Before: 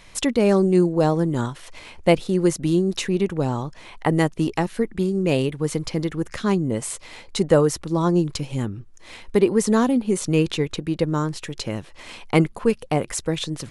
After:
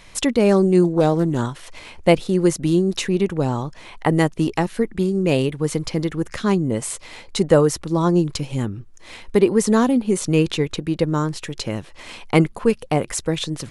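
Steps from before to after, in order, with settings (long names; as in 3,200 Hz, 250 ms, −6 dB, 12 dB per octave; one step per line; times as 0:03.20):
0:00.84–0:01.43: highs frequency-modulated by the lows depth 0.17 ms
level +2 dB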